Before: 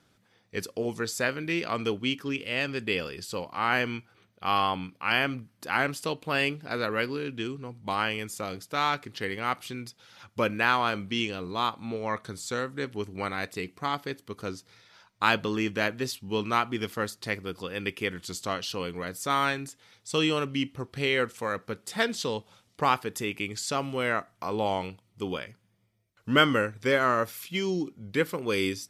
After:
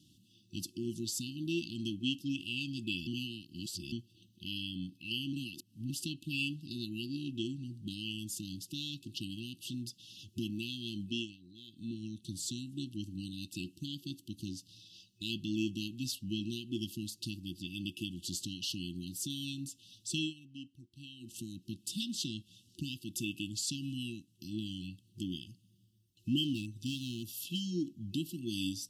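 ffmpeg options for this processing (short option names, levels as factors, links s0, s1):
-filter_complex "[0:a]asplit=3[s0][s1][s2];[s0]afade=t=out:st=26.43:d=0.02[s3];[s1]asoftclip=type=hard:threshold=0.0841,afade=t=in:st=26.43:d=0.02,afade=t=out:st=27.61:d=0.02[s4];[s2]afade=t=in:st=27.61:d=0.02[s5];[s3][s4][s5]amix=inputs=3:normalize=0,asplit=9[s6][s7][s8][s9][s10][s11][s12][s13][s14];[s6]atrim=end=3.072[s15];[s7]atrim=start=3.068:end=3.922,asetpts=PTS-STARTPTS,areverse[s16];[s8]atrim=start=3.918:end=5.332[s17];[s9]atrim=start=5.328:end=5.902,asetpts=PTS-STARTPTS,areverse[s18];[s10]atrim=start=5.898:end=11.37,asetpts=PTS-STARTPTS,afade=t=out:st=5.112:d=0.36:silence=0.0944061[s19];[s11]atrim=start=11.37:end=11.67,asetpts=PTS-STARTPTS,volume=0.0944[s20];[s12]atrim=start=11.67:end=20.34,asetpts=PTS-STARTPTS,afade=t=in:d=0.36:silence=0.0944061,afade=t=out:st=8.49:d=0.18:silence=0.0944061[s21];[s13]atrim=start=20.34:end=21.2,asetpts=PTS-STARTPTS,volume=0.0944[s22];[s14]atrim=start=21.2,asetpts=PTS-STARTPTS,afade=t=in:d=0.18:silence=0.0944061[s23];[s15][s16]acrossfade=d=0.004:c1=hsin:c2=hsin[s24];[s24][s17]acrossfade=d=0.004:c1=hsin:c2=hsin[s25];[s25][s18]acrossfade=d=0.004:c1=hsin:c2=hsin[s26];[s19][s20][s21][s22][s23]concat=n=5:v=0:a=1[s27];[s26][s27]acrossfade=d=0.004:c1=hsin:c2=hsin,highpass=63,acompressor=threshold=0.00501:ratio=1.5,afftfilt=real='re*(1-between(b*sr/4096,360,2600))':imag='im*(1-between(b*sr/4096,360,2600))':win_size=4096:overlap=0.75,volume=1.5"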